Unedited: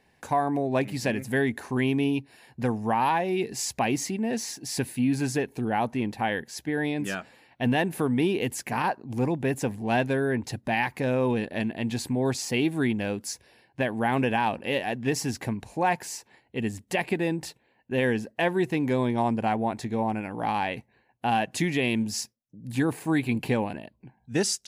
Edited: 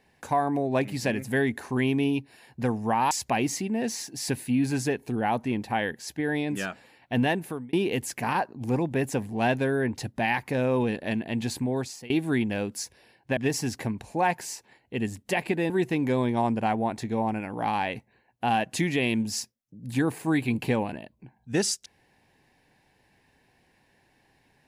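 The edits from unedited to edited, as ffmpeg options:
-filter_complex "[0:a]asplit=6[a][b][c][d][e][f];[a]atrim=end=3.112[g];[b]atrim=start=3.598:end=8.22,asetpts=PTS-STARTPTS,afade=t=out:st=4.162:d=0.46[h];[c]atrim=start=8.22:end=12.59,asetpts=PTS-STARTPTS,afade=t=in:d=0.004:c=hsin,afade=t=out:st=3.87:d=0.5:silence=0.0794328[i];[d]atrim=start=12.59:end=13.862,asetpts=PTS-STARTPTS,afade=t=in:d=0.004:c=hsin:silence=0.0794328[j];[e]atrim=start=14.988:end=17.322[k];[f]atrim=start=18.508[l];[h][i][j]concat=n=3:v=0:a=1[m];[g][m]acrossfade=d=0.004:c1=hsin:c2=hsin[n];[n][k]acrossfade=d=0.004:c1=hsin:c2=hsin[o];[o][l]acrossfade=d=0.004:c1=hsin:c2=hsin"

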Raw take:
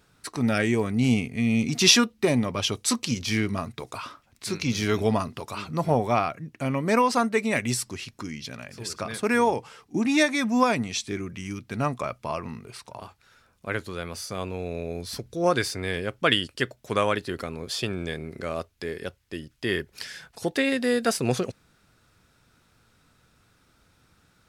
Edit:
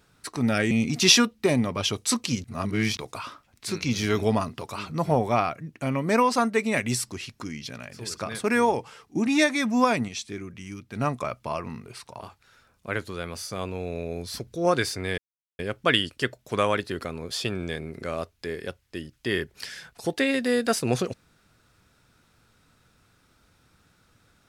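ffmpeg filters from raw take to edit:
-filter_complex "[0:a]asplit=7[a][b][c][d][e][f][g];[a]atrim=end=0.712[h];[b]atrim=start=1.498:end=3.232[i];[c]atrim=start=3.228:end=3.762,asetpts=PTS-STARTPTS,areverse[j];[d]atrim=start=3.758:end=10.872[k];[e]atrim=start=10.868:end=11.752,asetpts=PTS-STARTPTS,volume=-4.5dB[l];[f]atrim=start=11.748:end=15.97,asetpts=PTS-STARTPTS,afade=t=out:st=4.218:d=0.004:c=hsin,apad=pad_dur=0.41[m];[g]atrim=start=15.97,asetpts=PTS-STARTPTS,afade=t=in:d=0.004:c=hsin[n];[h][i]acrossfade=d=0.004:c1=hsin:c2=hsin[o];[o][j]acrossfade=d=0.004:c1=hsin:c2=hsin[p];[p][k]acrossfade=d=0.004:c1=hsin:c2=hsin[q];[q][l]acrossfade=d=0.004:c1=hsin:c2=hsin[r];[m][n]concat=n=2:v=0:a=1[s];[r][s]acrossfade=d=0.004:c1=hsin:c2=hsin"

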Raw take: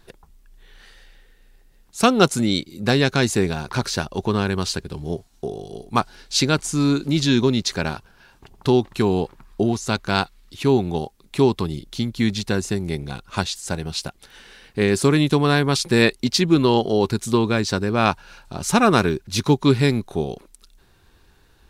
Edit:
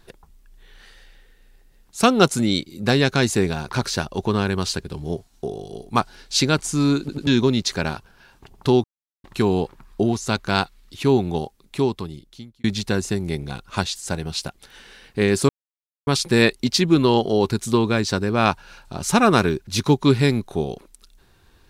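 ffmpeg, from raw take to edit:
-filter_complex "[0:a]asplit=8[a][b][c][d][e][f][g][h];[a]atrim=end=7.092[i];[b]atrim=start=6.998:end=7.092[j];[c]atrim=start=6.998:end=7.092[k];[d]atrim=start=7.268:end=8.84,asetpts=PTS-STARTPTS,afade=t=out:st=1.568:d=0.004:c=hsin,apad=pad_dur=0.4[l];[e]atrim=start=8.84:end=12.24,asetpts=PTS-STARTPTS,afade=t=in:d=0.004:c=hsin,afade=t=out:st=2.14:d=1.26[m];[f]atrim=start=12.24:end=15.09,asetpts=PTS-STARTPTS,afade=t=in:d=0.004:c=hsin,afade=t=out:st=2.846:d=0.004:c=hsin[n];[g]atrim=start=15.09:end=15.67,asetpts=PTS-STARTPTS,volume=0[o];[h]atrim=start=15.67,asetpts=PTS-STARTPTS,afade=t=in:d=0.004:c=hsin[p];[i][j]acrossfade=d=0.004:c1=hsin:c2=hsin[q];[q][k]acrossfade=d=0.004:c1=hsin:c2=hsin[r];[l][m][n][o][p]concat=n=5:v=0:a=1[s];[r][s]acrossfade=d=0.004:c1=hsin:c2=hsin"

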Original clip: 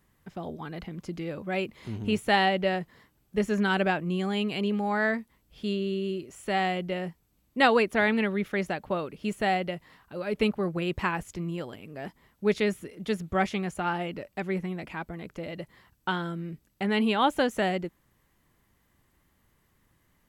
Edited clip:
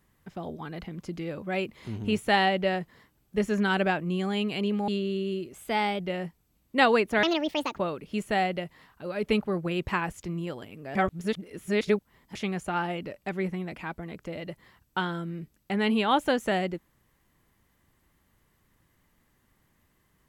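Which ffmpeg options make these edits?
-filter_complex "[0:a]asplit=8[a][b][c][d][e][f][g][h];[a]atrim=end=4.882[i];[b]atrim=start=5.648:end=6.314[j];[c]atrim=start=6.31:end=6.82,asetpts=PTS-STARTPTS,asetrate=48951,aresample=44100,atrim=end_sample=20262,asetpts=PTS-STARTPTS[k];[d]atrim=start=6.816:end=8.054[l];[e]atrim=start=8.05:end=8.89,asetpts=PTS-STARTPTS,asetrate=67032,aresample=44100,atrim=end_sample=24371,asetpts=PTS-STARTPTS[m];[f]atrim=start=8.886:end=12.062[n];[g]atrim=start=12.058:end=13.462,asetpts=PTS-STARTPTS,areverse[o];[h]atrim=start=13.458[p];[i][j]acrossfade=d=0.004:c1=hsin:c2=hsin[q];[q][k]acrossfade=d=0.004:c1=hsin:c2=hsin[r];[r][l]acrossfade=d=0.004:c1=hsin:c2=hsin[s];[s][m]acrossfade=d=0.004:c1=hsin:c2=hsin[t];[t][n]acrossfade=d=0.004:c1=hsin:c2=hsin[u];[u][o]acrossfade=d=0.004:c1=hsin:c2=hsin[v];[v][p]acrossfade=d=0.004:c1=hsin:c2=hsin"

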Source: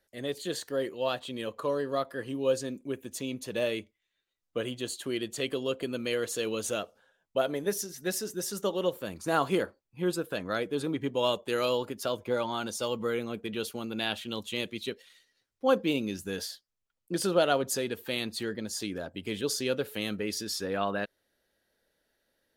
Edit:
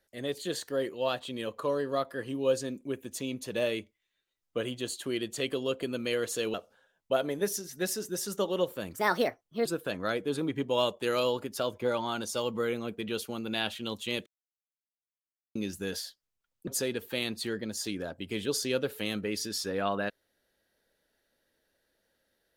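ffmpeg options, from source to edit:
-filter_complex "[0:a]asplit=7[a][b][c][d][e][f][g];[a]atrim=end=6.542[h];[b]atrim=start=6.788:end=9.194[i];[c]atrim=start=9.19:end=10.11,asetpts=PTS-STARTPTS,asetrate=56889,aresample=44100,atrim=end_sample=31451,asetpts=PTS-STARTPTS[j];[d]atrim=start=10.106:end=14.72,asetpts=PTS-STARTPTS,afade=t=out:st=4.61:d=0.004:c=hsin[k];[e]atrim=start=14.72:end=16.01,asetpts=PTS-STARTPTS,volume=0[l];[f]atrim=start=16.01:end=17.132,asetpts=PTS-STARTPTS,afade=t=in:d=0.004:c=hsin[m];[g]atrim=start=17.628[n];[h][i]acrossfade=d=0.004:c1=hsin:c2=hsin[o];[o][j]acrossfade=d=0.004:c1=hsin:c2=hsin[p];[k][l][m]concat=n=3:v=0:a=1[q];[p][q]acrossfade=d=0.004:c1=hsin:c2=hsin[r];[r][n]acrossfade=d=0.004:c1=hsin:c2=hsin"

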